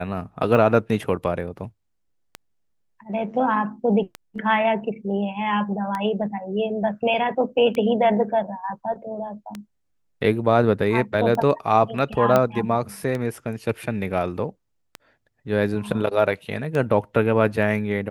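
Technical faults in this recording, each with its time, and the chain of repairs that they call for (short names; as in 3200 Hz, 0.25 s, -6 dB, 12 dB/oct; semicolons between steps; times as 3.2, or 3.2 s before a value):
tick 33 1/3 rpm -15 dBFS
12.36 pop -6 dBFS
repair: de-click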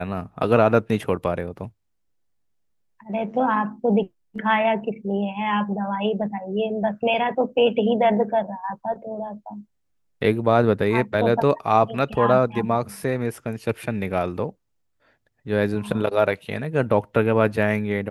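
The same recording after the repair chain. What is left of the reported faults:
none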